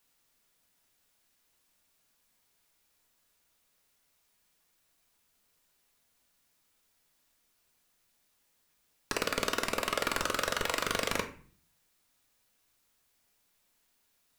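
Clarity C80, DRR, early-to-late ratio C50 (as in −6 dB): 16.0 dB, 5.0 dB, 11.5 dB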